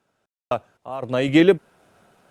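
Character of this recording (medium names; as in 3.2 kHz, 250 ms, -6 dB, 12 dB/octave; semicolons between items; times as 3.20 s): random-step tremolo 3.9 Hz, depth 100%; Opus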